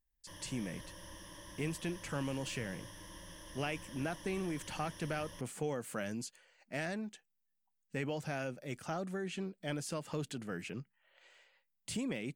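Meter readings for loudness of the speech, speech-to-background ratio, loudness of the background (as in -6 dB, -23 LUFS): -40.5 LUFS, 11.0 dB, -51.5 LUFS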